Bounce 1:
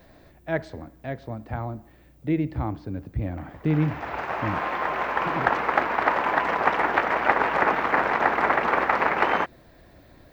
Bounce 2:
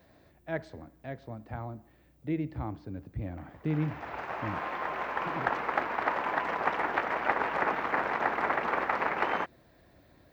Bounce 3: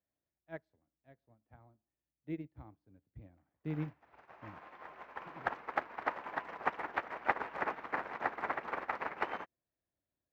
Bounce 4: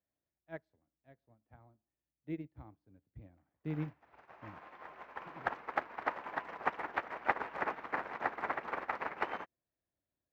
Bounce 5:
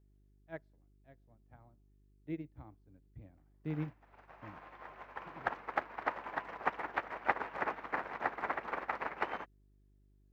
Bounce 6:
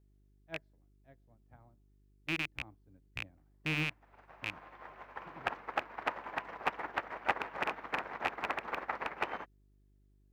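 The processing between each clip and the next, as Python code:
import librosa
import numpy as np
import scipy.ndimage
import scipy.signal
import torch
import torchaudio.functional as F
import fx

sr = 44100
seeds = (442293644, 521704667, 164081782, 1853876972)

y1 = scipy.signal.sosfilt(scipy.signal.butter(2, 54.0, 'highpass', fs=sr, output='sos'), x)
y1 = F.gain(torch.from_numpy(y1), -7.5).numpy()
y2 = fx.upward_expand(y1, sr, threshold_db=-45.0, expansion=2.5)
y2 = F.gain(torch.from_numpy(y2), -2.0).numpy()
y3 = y2
y4 = fx.dmg_buzz(y3, sr, base_hz=50.0, harmonics=8, level_db=-67.0, tilt_db=-7, odd_only=False)
y5 = fx.rattle_buzz(y4, sr, strikes_db=-48.0, level_db=-22.0)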